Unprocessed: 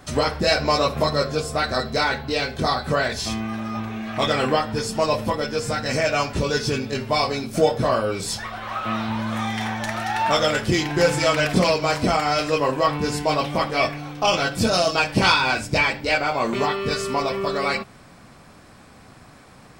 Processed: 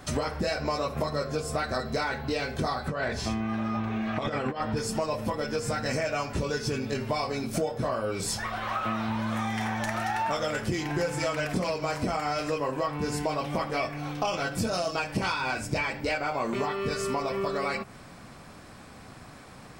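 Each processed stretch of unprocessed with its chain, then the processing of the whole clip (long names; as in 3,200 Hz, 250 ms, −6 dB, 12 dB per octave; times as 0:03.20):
0:02.88–0:04.77: low-pass filter 2,600 Hz 6 dB per octave + compressor whose output falls as the input rises −24 dBFS, ratio −0.5
whole clip: dynamic equaliser 3,700 Hz, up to −6 dB, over −40 dBFS, Q 1.5; downward compressor 6 to 1, threshold −26 dBFS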